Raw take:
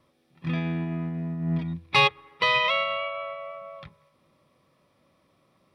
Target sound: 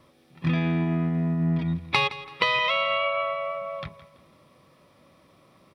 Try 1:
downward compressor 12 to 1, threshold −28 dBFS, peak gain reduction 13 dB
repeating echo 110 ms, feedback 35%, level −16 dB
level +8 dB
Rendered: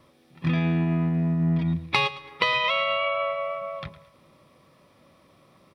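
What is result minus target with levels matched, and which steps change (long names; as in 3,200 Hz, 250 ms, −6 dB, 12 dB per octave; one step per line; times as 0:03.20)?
echo 56 ms early
change: repeating echo 166 ms, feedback 35%, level −16 dB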